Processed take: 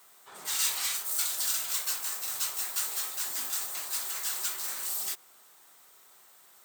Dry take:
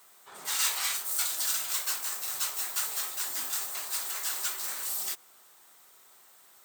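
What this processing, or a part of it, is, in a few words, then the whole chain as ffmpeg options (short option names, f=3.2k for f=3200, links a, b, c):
one-band saturation: -filter_complex "[0:a]acrossover=split=370|2700[a][b][c];[b]asoftclip=type=tanh:threshold=-39.5dB[d];[a][d][c]amix=inputs=3:normalize=0"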